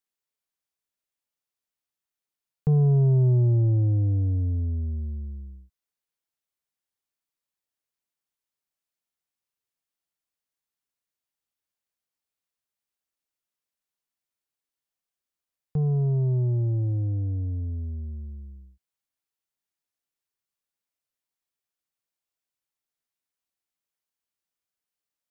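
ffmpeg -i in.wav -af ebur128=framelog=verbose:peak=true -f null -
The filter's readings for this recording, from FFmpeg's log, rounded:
Integrated loudness:
  I:         -24.2 LUFS
  Threshold: -35.3 LUFS
Loudness range:
  LRA:        16.7 LU
  Threshold: -47.6 LUFS
  LRA low:   -39.9 LUFS
  LRA high:  -23.2 LUFS
True peak:
  Peak:      -16.9 dBFS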